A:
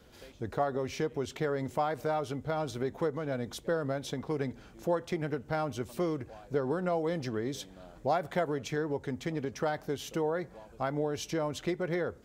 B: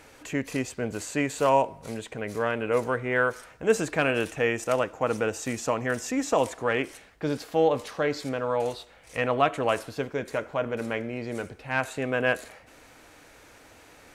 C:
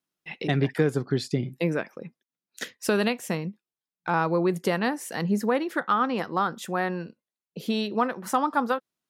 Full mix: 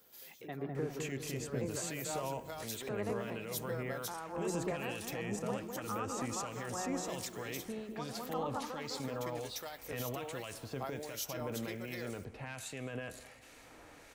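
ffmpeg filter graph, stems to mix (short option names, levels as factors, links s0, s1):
-filter_complex "[0:a]aexciter=amount=2.2:drive=5.7:freq=12000,volume=0.447[s0];[1:a]acrossover=split=150|3000[s1][s2][s3];[s2]acompressor=threshold=0.0126:ratio=2.5[s4];[s1][s4][s3]amix=inputs=3:normalize=0,alimiter=level_in=1.58:limit=0.0631:level=0:latency=1:release=16,volume=0.631,adelay=750,volume=0.841,asplit=2[s5][s6];[s6]volume=0.0944[s7];[2:a]lowpass=1100,volume=0.355,asplit=3[s8][s9][s10];[s9]volume=0.398[s11];[s10]apad=whole_len=540044[s12];[s0][s12]sidechaincompress=threshold=0.00501:ratio=10:attack=7.2:release=127[s13];[s13][s8]amix=inputs=2:normalize=0,aemphasis=mode=production:type=riaa,alimiter=level_in=1.5:limit=0.0631:level=0:latency=1:release=307,volume=0.668,volume=1[s14];[s7][s11]amix=inputs=2:normalize=0,aecho=0:1:203|406|609|812|1015|1218|1421|1624:1|0.56|0.314|0.176|0.0983|0.0551|0.0308|0.0173[s15];[s5][s14][s15]amix=inputs=3:normalize=0,bandreject=f=1500:w=23,acrossover=split=1800[s16][s17];[s16]aeval=exprs='val(0)*(1-0.5/2+0.5/2*cos(2*PI*1.3*n/s))':c=same[s18];[s17]aeval=exprs='val(0)*(1-0.5/2-0.5/2*cos(2*PI*1.3*n/s))':c=same[s19];[s18][s19]amix=inputs=2:normalize=0"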